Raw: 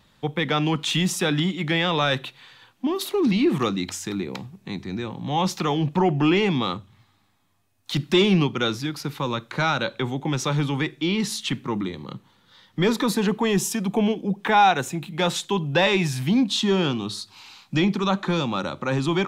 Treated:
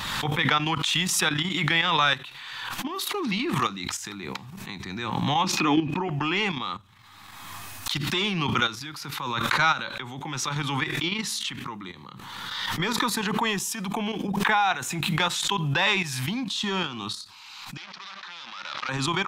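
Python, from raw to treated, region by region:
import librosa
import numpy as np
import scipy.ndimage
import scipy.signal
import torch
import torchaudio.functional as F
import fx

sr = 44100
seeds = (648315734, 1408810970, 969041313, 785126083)

y = fx.chain(x, sr, fx.high_shelf(hz=7800.0, db=-10.5),
    fx.small_body(hz=(290.0, 2500.0), ring_ms=40, db=16), at=(5.44, 6.08))
y = fx.chain(y, sr, fx.leveller(passes=5),
    fx.bandpass_q(hz=5700.0, q=2.7),
    fx.air_absorb(metres=340.0), at=(17.77, 18.89))
y = fx.level_steps(y, sr, step_db=11)
y = fx.low_shelf_res(y, sr, hz=750.0, db=-8.5, q=1.5)
y = fx.pre_swell(y, sr, db_per_s=28.0)
y = y * librosa.db_to_amplitude(2.5)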